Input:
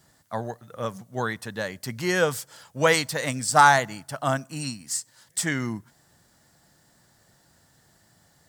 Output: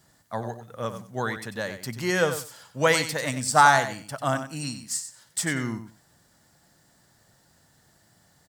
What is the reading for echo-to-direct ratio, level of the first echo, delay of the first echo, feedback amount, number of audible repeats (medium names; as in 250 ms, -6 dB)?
-10.0 dB, -10.0 dB, 94 ms, 17%, 2